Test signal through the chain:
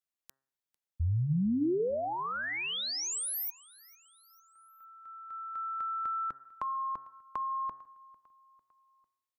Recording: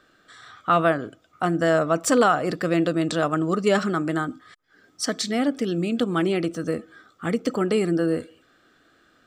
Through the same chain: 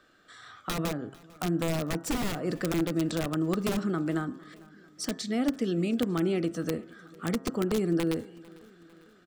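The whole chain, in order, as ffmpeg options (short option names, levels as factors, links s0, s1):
-filter_complex "[0:a]aeval=exprs='(mod(4.73*val(0)+1,2)-1)/4.73':c=same,bandreject=f=134.8:t=h:w=4,bandreject=f=269.6:t=h:w=4,bandreject=f=404.4:t=h:w=4,bandreject=f=539.2:t=h:w=4,bandreject=f=674:t=h:w=4,bandreject=f=808.8:t=h:w=4,bandreject=f=943.6:t=h:w=4,bandreject=f=1078.4:t=h:w=4,bandreject=f=1213.2:t=h:w=4,bandreject=f=1348:t=h:w=4,bandreject=f=1482.8:t=h:w=4,bandreject=f=1617.6:t=h:w=4,bandreject=f=1752.4:t=h:w=4,bandreject=f=1887.2:t=h:w=4,acrossover=split=420[s0][s1];[s1]acompressor=threshold=0.0282:ratio=6[s2];[s0][s2]amix=inputs=2:normalize=0,asplit=2[s3][s4];[s4]aecho=0:1:449|898|1347:0.0708|0.0368|0.0191[s5];[s3][s5]amix=inputs=2:normalize=0,volume=0.708"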